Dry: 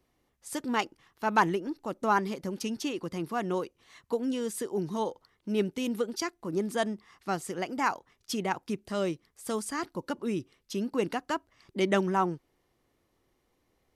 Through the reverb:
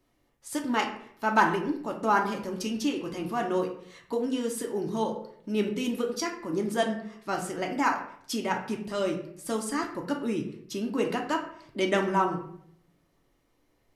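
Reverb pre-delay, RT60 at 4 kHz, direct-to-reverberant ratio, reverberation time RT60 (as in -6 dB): 3 ms, 0.45 s, 1.0 dB, 0.65 s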